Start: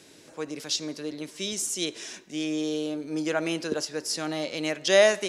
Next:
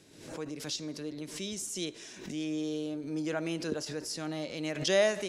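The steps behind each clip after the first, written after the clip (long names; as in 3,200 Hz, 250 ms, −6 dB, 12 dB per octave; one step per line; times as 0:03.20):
low-shelf EQ 210 Hz +11.5 dB
background raised ahead of every attack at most 73 dB per second
level −8.5 dB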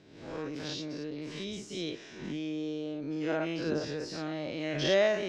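every bin's largest magnitude spread in time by 120 ms
high-frequency loss of the air 190 metres
level −2 dB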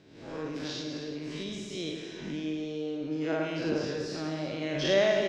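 single-tap delay 109 ms −8 dB
convolution reverb, pre-delay 3 ms, DRR 6.5 dB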